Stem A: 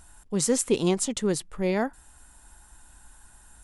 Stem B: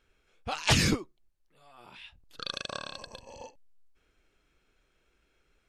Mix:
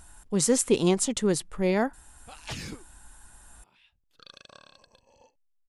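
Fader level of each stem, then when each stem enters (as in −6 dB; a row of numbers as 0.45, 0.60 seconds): +1.0, −13.5 decibels; 0.00, 1.80 seconds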